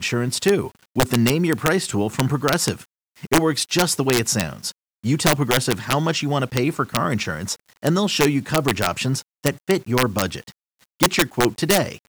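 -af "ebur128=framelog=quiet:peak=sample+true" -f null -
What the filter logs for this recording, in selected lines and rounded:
Integrated loudness:
  I:         -20.8 LUFS
  Threshold: -31.0 LUFS
Loudness range:
  LRA:         1.4 LU
  Threshold: -41.2 LUFS
  LRA low:   -21.8 LUFS
  LRA high:  -20.4 LUFS
Sample peak:
  Peak:       -7.9 dBFS
True peak:
  Peak:       -3.5 dBFS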